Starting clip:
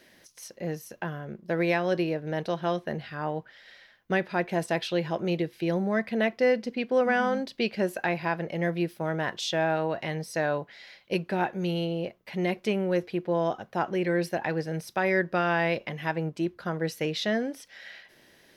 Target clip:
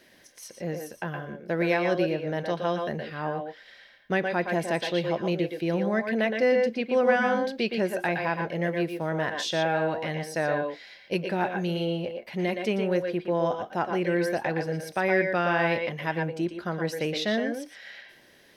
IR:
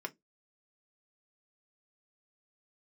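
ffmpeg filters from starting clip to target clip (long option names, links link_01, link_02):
-filter_complex "[0:a]asplit=2[link_01][link_02];[1:a]atrim=start_sample=2205,asetrate=70560,aresample=44100,adelay=117[link_03];[link_02][link_03]afir=irnorm=-1:irlink=0,volume=-1.5dB[link_04];[link_01][link_04]amix=inputs=2:normalize=0"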